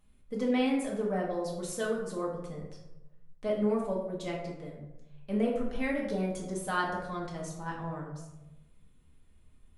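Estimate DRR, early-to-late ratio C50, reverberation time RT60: -4.0 dB, 4.0 dB, 1.0 s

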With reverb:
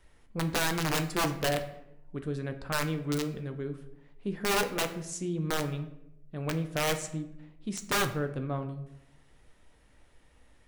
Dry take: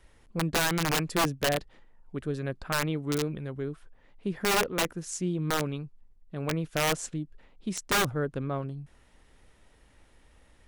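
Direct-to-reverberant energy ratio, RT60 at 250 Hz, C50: 6.5 dB, 1.0 s, 12.0 dB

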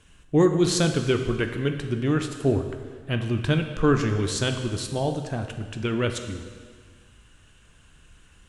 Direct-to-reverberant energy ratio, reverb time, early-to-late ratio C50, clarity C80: 5.5 dB, 1.7 s, 7.5 dB, 9.0 dB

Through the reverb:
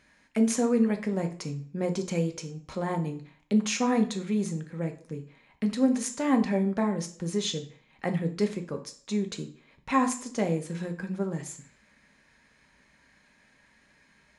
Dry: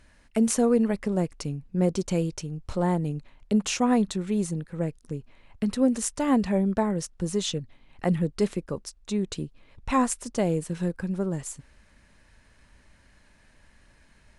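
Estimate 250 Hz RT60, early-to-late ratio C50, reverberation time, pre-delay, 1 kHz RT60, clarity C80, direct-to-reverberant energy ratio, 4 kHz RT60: 0.45 s, 13.0 dB, 0.50 s, 3 ms, 0.45 s, 17.5 dB, 5.0 dB, 0.40 s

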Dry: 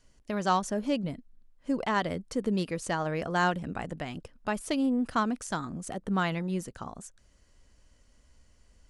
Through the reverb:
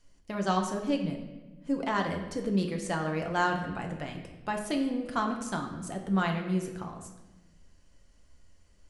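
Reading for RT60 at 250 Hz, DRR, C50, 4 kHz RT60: 1.6 s, 2.0 dB, 6.5 dB, 0.90 s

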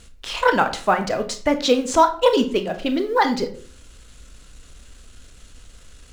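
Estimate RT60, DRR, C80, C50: 0.50 s, 7.5 dB, 17.0 dB, 12.5 dB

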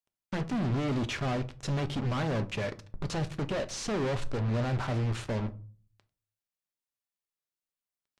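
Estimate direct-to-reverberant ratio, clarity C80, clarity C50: 9.5 dB, 24.5 dB, 19.0 dB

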